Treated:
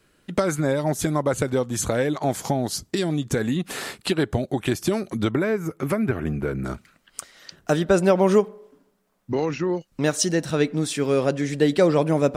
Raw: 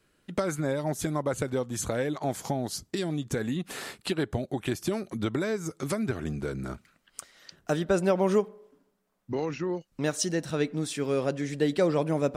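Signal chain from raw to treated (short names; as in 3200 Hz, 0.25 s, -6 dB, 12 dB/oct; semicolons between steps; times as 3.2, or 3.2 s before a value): 5.31–6.65 band shelf 5700 Hz -12 dB; gain +6.5 dB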